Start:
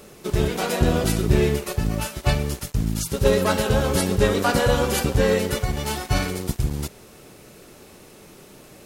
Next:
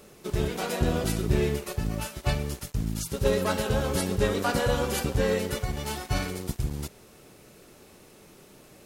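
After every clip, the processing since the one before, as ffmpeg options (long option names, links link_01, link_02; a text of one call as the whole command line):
ffmpeg -i in.wav -af "acrusher=bits=11:mix=0:aa=0.000001,volume=-6dB" out.wav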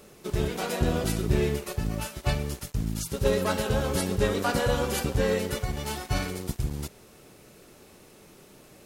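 ffmpeg -i in.wav -af anull out.wav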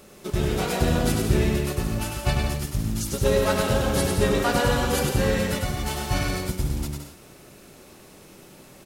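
ffmpeg -i in.wav -filter_complex "[0:a]bandreject=frequency=450:width=13,asplit=2[link_01][link_02];[link_02]aecho=0:1:100|170|219|253.3|277.3:0.631|0.398|0.251|0.158|0.1[link_03];[link_01][link_03]amix=inputs=2:normalize=0,volume=2.5dB" out.wav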